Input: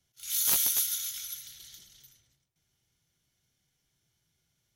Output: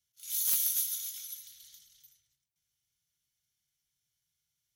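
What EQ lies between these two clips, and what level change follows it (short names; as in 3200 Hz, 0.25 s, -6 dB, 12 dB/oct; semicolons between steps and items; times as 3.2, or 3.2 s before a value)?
passive tone stack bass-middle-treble 5-5-5; high shelf 11000 Hz +5.5 dB; 0.0 dB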